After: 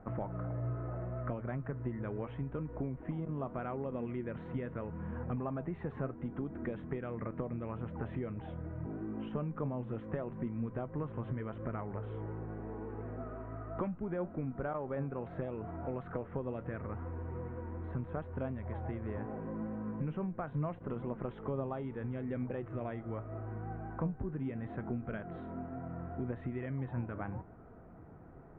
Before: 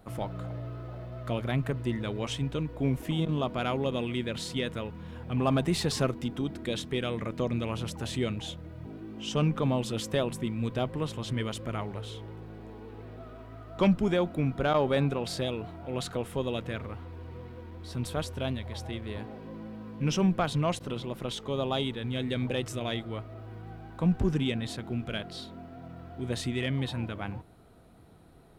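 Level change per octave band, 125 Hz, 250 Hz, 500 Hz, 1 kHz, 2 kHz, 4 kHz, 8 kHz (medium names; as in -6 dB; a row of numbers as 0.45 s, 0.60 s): -6.5 dB, -7.5 dB, -8.0 dB, -7.5 dB, -11.5 dB, under -30 dB, under -35 dB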